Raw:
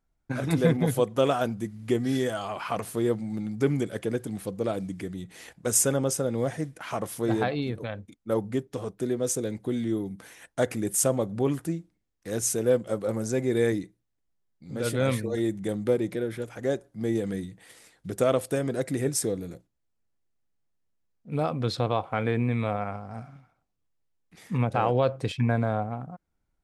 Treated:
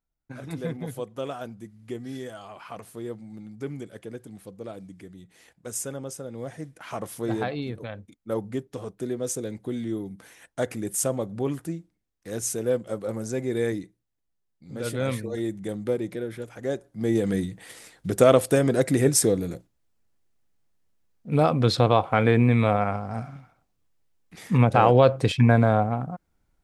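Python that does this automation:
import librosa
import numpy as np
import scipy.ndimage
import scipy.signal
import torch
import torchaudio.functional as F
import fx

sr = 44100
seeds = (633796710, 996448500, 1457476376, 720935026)

y = fx.gain(x, sr, db=fx.line((6.28, -9.5), (6.97, -2.0), (16.64, -2.0), (17.4, 7.0)))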